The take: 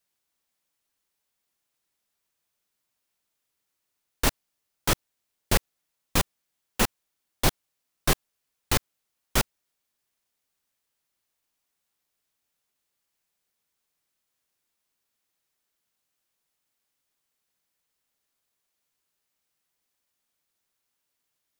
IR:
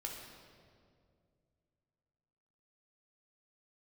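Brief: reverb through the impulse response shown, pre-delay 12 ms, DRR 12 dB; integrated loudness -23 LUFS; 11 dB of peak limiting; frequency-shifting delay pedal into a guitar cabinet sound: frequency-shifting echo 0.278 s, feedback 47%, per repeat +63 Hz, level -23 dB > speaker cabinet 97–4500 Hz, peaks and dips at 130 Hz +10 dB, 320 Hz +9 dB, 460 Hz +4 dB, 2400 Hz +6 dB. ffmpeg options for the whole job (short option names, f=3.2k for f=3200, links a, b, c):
-filter_complex "[0:a]alimiter=limit=-17.5dB:level=0:latency=1,asplit=2[a][b];[1:a]atrim=start_sample=2205,adelay=12[c];[b][c]afir=irnorm=-1:irlink=0,volume=-11dB[d];[a][d]amix=inputs=2:normalize=0,asplit=4[e][f][g][h];[f]adelay=278,afreqshift=63,volume=-23dB[i];[g]adelay=556,afreqshift=126,volume=-29.6dB[j];[h]adelay=834,afreqshift=189,volume=-36.1dB[k];[e][i][j][k]amix=inputs=4:normalize=0,highpass=97,equalizer=f=130:t=q:w=4:g=10,equalizer=f=320:t=q:w=4:g=9,equalizer=f=460:t=q:w=4:g=4,equalizer=f=2.4k:t=q:w=4:g=6,lowpass=f=4.5k:w=0.5412,lowpass=f=4.5k:w=1.3066,volume=11.5dB"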